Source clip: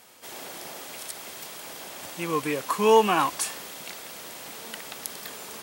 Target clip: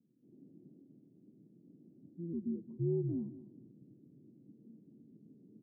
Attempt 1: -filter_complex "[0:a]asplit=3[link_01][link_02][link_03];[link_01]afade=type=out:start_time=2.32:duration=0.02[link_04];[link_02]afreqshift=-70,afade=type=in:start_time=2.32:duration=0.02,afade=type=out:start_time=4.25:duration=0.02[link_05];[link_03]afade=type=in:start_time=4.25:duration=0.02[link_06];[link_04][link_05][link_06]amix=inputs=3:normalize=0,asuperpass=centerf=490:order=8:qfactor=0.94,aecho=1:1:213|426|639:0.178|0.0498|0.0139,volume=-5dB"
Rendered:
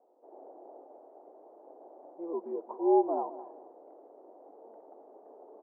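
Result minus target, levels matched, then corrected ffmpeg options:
500 Hz band +4.0 dB
-filter_complex "[0:a]asplit=3[link_01][link_02][link_03];[link_01]afade=type=out:start_time=2.32:duration=0.02[link_04];[link_02]afreqshift=-70,afade=type=in:start_time=2.32:duration=0.02,afade=type=out:start_time=4.25:duration=0.02[link_05];[link_03]afade=type=in:start_time=4.25:duration=0.02[link_06];[link_04][link_05][link_06]amix=inputs=3:normalize=0,asuperpass=centerf=190:order=8:qfactor=0.94,aecho=1:1:213|426|639:0.178|0.0498|0.0139,volume=-5dB"

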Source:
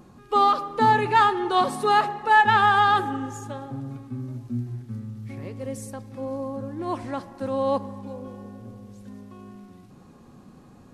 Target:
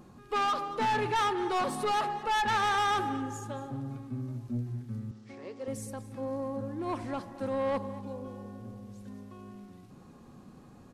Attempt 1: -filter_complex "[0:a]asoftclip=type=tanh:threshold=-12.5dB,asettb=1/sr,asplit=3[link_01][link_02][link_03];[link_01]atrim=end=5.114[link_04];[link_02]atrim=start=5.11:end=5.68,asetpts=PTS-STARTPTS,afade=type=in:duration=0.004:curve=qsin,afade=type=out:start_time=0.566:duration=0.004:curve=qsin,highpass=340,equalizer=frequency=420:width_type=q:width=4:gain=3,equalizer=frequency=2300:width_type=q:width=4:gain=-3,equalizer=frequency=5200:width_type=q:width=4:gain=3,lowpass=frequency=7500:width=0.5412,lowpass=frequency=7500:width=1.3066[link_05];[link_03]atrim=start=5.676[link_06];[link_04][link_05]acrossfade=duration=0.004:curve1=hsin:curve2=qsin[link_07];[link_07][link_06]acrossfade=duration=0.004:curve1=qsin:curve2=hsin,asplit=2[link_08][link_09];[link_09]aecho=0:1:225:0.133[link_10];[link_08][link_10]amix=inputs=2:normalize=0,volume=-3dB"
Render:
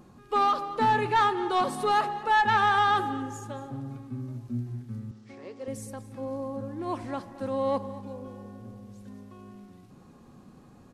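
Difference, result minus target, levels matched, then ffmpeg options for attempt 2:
soft clipping: distortion −10 dB
-filter_complex "[0:a]asoftclip=type=tanh:threshold=-22dB,asettb=1/sr,asplit=3[link_01][link_02][link_03];[link_01]atrim=end=5.114[link_04];[link_02]atrim=start=5.11:end=5.68,asetpts=PTS-STARTPTS,afade=type=in:duration=0.004:curve=qsin,afade=type=out:start_time=0.566:duration=0.004:curve=qsin,highpass=340,equalizer=frequency=420:width_type=q:width=4:gain=3,equalizer=frequency=2300:width_type=q:width=4:gain=-3,equalizer=frequency=5200:width_type=q:width=4:gain=3,lowpass=frequency=7500:width=0.5412,lowpass=frequency=7500:width=1.3066[link_05];[link_03]atrim=start=5.676[link_06];[link_04][link_05]acrossfade=duration=0.004:curve1=hsin:curve2=qsin[link_07];[link_07][link_06]acrossfade=duration=0.004:curve1=qsin:curve2=hsin,asplit=2[link_08][link_09];[link_09]aecho=0:1:225:0.133[link_10];[link_08][link_10]amix=inputs=2:normalize=0,volume=-3dB"

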